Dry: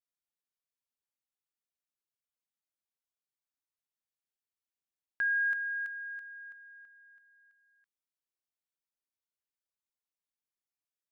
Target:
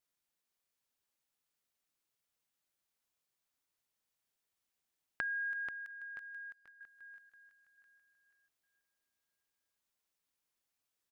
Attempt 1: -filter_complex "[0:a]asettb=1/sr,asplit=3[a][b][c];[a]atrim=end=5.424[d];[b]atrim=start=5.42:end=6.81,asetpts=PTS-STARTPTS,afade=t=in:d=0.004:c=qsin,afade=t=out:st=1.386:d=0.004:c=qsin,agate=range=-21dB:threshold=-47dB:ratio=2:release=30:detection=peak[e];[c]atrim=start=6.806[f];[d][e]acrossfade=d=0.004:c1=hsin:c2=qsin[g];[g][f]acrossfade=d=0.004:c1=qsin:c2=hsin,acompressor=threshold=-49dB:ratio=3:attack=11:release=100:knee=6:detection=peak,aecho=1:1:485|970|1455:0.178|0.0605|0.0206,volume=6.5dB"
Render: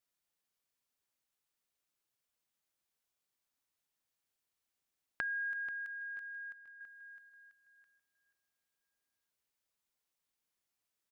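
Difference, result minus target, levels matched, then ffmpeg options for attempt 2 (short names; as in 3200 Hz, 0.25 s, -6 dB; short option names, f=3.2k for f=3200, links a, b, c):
echo-to-direct -7 dB
-filter_complex "[0:a]asettb=1/sr,asplit=3[a][b][c];[a]atrim=end=5.424[d];[b]atrim=start=5.42:end=6.81,asetpts=PTS-STARTPTS,afade=t=in:d=0.004:c=qsin,afade=t=out:st=1.386:d=0.004:c=qsin,agate=range=-21dB:threshold=-47dB:ratio=2:release=30:detection=peak[e];[c]atrim=start=6.806[f];[d][e]acrossfade=d=0.004:c1=hsin:c2=qsin[g];[g][f]acrossfade=d=0.004:c1=qsin:c2=hsin,acompressor=threshold=-49dB:ratio=3:attack=11:release=100:knee=6:detection=peak,aecho=1:1:485|970|1455|1940:0.398|0.135|0.046|0.0156,volume=6.5dB"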